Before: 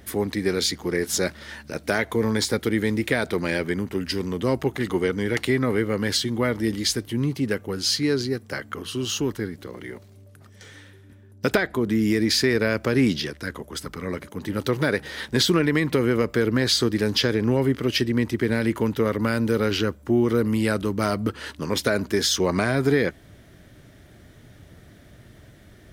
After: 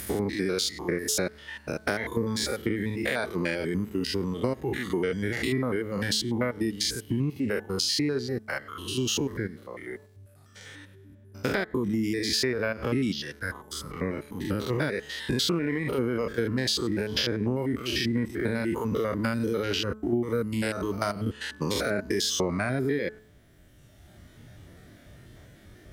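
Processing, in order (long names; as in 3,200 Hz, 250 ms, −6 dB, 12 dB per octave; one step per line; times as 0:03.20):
spectrum averaged block by block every 100 ms
reverb reduction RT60 1.8 s
downward compressor, threshold −28 dBFS, peak gain reduction 11 dB
hum removal 215.6 Hz, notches 8
level +4.5 dB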